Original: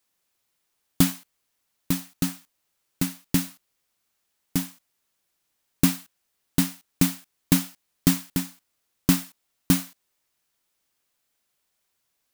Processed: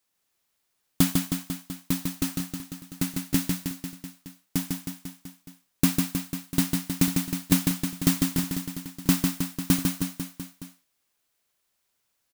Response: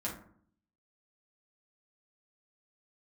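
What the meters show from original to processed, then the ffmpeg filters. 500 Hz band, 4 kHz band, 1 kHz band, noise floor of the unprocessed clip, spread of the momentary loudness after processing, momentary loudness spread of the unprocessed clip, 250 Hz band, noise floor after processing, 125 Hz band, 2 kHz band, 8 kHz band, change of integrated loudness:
0.0 dB, 0.0 dB, 0.0 dB, −76 dBFS, 17 LU, 15 LU, +0.5 dB, −76 dBFS, 0.0 dB, 0.0 dB, 0.0 dB, −1.5 dB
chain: -af "aecho=1:1:150|315|496.5|696.2|915.8:0.631|0.398|0.251|0.158|0.1,volume=-2dB"

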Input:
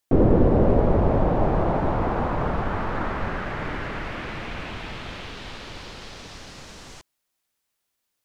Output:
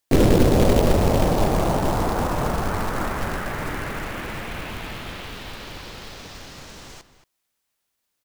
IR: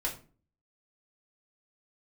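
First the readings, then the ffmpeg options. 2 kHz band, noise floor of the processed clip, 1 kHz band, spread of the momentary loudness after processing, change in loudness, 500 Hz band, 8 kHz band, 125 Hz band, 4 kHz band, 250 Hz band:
+2.5 dB, −77 dBFS, +1.5 dB, 21 LU, +1.5 dB, +1.5 dB, can't be measured, +1.5 dB, +6.5 dB, +1.5 dB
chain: -filter_complex "[0:a]asplit=2[link_01][link_02];[link_02]adelay=227.4,volume=-13dB,highshelf=frequency=4000:gain=-5.12[link_03];[link_01][link_03]amix=inputs=2:normalize=0,acrusher=bits=3:mode=log:mix=0:aa=0.000001,volume=1dB"

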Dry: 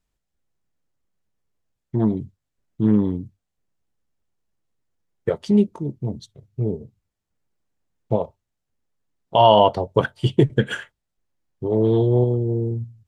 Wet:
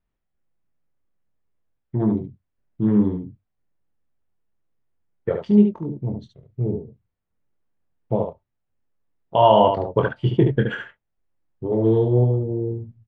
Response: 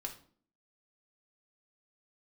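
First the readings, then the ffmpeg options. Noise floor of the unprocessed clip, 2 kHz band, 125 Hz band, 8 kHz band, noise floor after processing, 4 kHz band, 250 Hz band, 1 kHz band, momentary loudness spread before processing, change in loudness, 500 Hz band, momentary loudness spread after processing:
−80 dBFS, −1.0 dB, 0.0 dB, can't be measured, −77 dBFS, −6.0 dB, +0.5 dB, −1.0 dB, 15 LU, 0.0 dB, −0.5 dB, 16 LU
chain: -filter_complex "[0:a]lowpass=2400,asplit=2[link_01][link_02];[link_02]aecho=0:1:24|72:0.447|0.531[link_03];[link_01][link_03]amix=inputs=2:normalize=0,volume=-2dB"

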